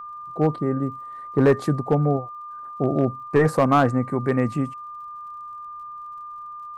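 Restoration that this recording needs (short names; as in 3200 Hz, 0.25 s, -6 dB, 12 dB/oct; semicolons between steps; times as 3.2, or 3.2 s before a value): clip repair -10 dBFS; de-click; notch 1200 Hz, Q 30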